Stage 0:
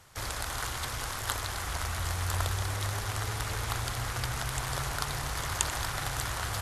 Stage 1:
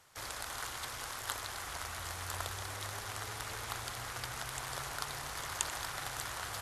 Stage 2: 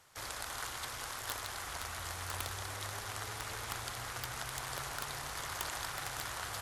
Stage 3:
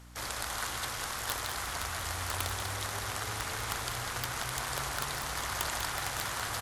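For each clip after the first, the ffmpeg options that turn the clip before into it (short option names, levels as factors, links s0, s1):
-af "lowshelf=f=180:g=-11.5,volume=0.531"
-af "aeval=exprs='(mod(15*val(0)+1,2)-1)/15':c=same"
-af "aeval=exprs='val(0)+0.00158*(sin(2*PI*60*n/s)+sin(2*PI*2*60*n/s)/2+sin(2*PI*3*60*n/s)/3+sin(2*PI*4*60*n/s)/4+sin(2*PI*5*60*n/s)/5)':c=same,aecho=1:1:196|392|588:0.355|0.0781|0.0172,volume=1.78"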